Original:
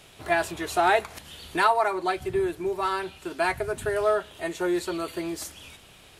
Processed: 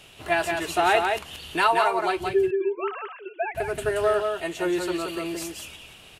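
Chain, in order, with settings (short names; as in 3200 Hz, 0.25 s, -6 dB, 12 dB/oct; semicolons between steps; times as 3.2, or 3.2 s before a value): 2.33–3.55 sine-wave speech; bell 2800 Hz +9.5 dB 0.22 oct; echo 0.176 s -4.5 dB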